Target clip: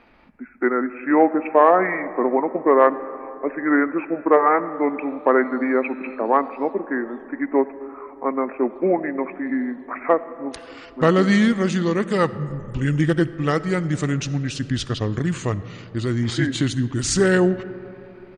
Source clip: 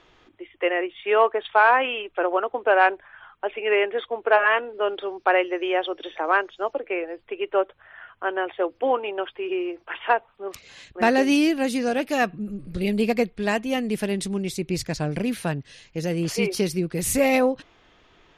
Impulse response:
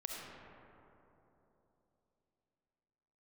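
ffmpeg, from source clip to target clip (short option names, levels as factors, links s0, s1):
-filter_complex "[0:a]asetrate=31183,aresample=44100,atempo=1.41421,asplit=2[s0][s1];[1:a]atrim=start_sample=2205[s2];[s1][s2]afir=irnorm=-1:irlink=0,volume=0.266[s3];[s0][s3]amix=inputs=2:normalize=0,volume=1.19"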